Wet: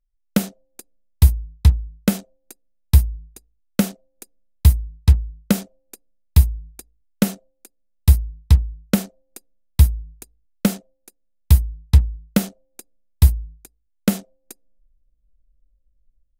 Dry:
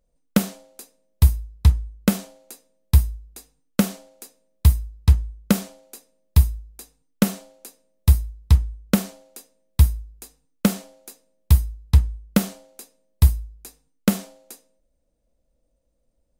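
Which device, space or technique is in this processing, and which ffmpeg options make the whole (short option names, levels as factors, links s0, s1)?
voice memo with heavy noise removal: -af "anlmdn=3.98,dynaudnorm=f=150:g=5:m=5.01,equalizer=f=1100:w=3.1:g=-4.5,volume=0.891"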